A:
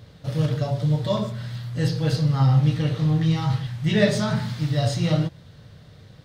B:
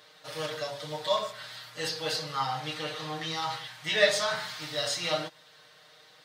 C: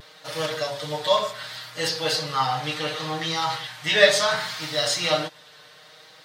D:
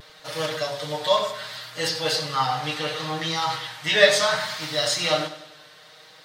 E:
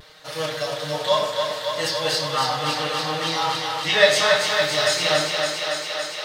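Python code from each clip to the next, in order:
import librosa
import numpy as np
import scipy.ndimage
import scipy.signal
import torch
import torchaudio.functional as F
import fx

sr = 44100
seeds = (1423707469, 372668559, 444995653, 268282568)

y1 = scipy.signal.sosfilt(scipy.signal.butter(2, 810.0, 'highpass', fs=sr, output='sos'), x)
y1 = y1 + 0.84 * np.pad(y1, (int(6.5 * sr / 1000.0), 0))[:len(y1)]
y2 = fx.vibrato(y1, sr, rate_hz=0.69, depth_cents=28.0)
y2 = y2 * librosa.db_to_amplitude(7.0)
y3 = fx.echo_feedback(y2, sr, ms=97, feedback_pct=50, wet_db=-14.0)
y4 = fx.doubler(y3, sr, ms=27.0, db=-10.5)
y4 = fx.echo_thinned(y4, sr, ms=281, feedback_pct=80, hz=200.0, wet_db=-5.0)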